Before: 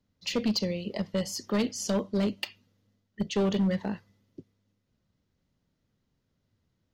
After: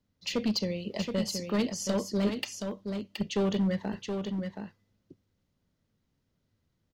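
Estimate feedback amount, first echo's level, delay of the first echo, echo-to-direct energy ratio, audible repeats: no steady repeat, -6.0 dB, 0.723 s, -6.0 dB, 1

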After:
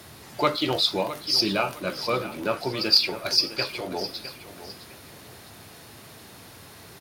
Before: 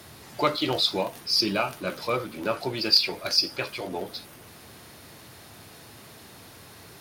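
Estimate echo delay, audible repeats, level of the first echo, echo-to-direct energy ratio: 0.659 s, 2, -13.5 dB, -13.0 dB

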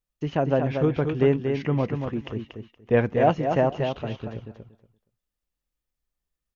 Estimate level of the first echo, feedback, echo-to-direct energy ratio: -6.0 dB, 17%, -6.0 dB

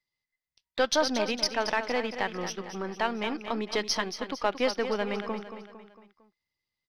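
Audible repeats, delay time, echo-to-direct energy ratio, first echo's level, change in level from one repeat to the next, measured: 4, 0.227 s, -9.0 dB, -10.0 dB, -6.0 dB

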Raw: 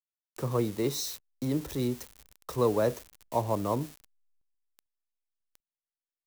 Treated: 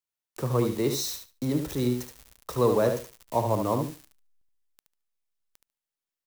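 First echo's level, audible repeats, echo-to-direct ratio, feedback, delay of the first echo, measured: -6.5 dB, 2, -6.5 dB, 17%, 73 ms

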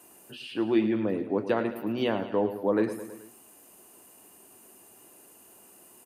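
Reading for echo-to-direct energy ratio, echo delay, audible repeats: -10.0 dB, 0.108 s, 4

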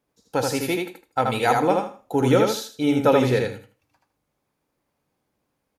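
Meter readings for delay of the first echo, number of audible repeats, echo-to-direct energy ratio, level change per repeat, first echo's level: 79 ms, 3, -3.5 dB, -13.0 dB, -3.5 dB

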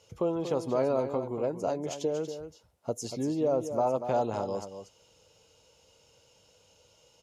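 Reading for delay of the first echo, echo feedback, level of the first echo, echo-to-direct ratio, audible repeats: 0.237 s, no steady repeat, -9.5 dB, -9.5 dB, 1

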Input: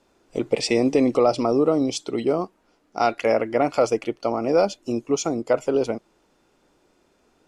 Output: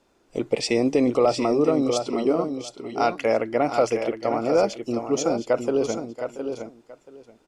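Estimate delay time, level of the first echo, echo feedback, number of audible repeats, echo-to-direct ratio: 0.68 s, -15.5 dB, no steady repeat, 3, -6.5 dB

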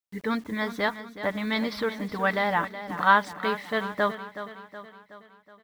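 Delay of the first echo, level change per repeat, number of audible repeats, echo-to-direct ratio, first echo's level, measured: 0.371 s, -5.5 dB, 5, -10.5 dB, -12.0 dB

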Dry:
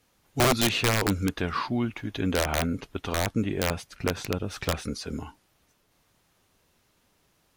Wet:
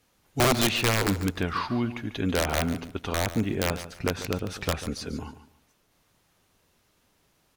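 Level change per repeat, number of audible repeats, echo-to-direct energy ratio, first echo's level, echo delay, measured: -12.5 dB, 2, -12.5 dB, -13.0 dB, 0.144 s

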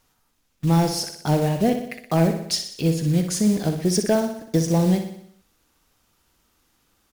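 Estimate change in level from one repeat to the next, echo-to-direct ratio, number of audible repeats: -5.0 dB, -6.5 dB, 6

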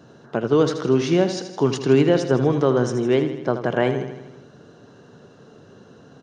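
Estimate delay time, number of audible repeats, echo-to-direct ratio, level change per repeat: 80 ms, 6, -8.0 dB, -4.5 dB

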